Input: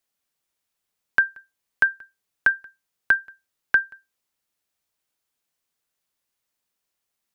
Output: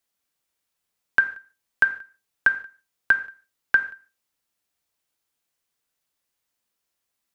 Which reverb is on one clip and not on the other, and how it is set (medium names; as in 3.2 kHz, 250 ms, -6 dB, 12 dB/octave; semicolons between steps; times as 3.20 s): gated-style reverb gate 180 ms falling, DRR 8 dB